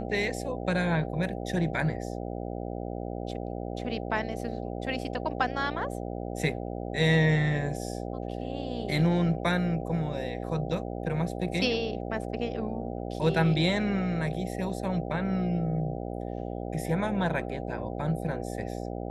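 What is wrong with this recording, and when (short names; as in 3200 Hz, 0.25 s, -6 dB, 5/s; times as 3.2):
buzz 60 Hz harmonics 13 -35 dBFS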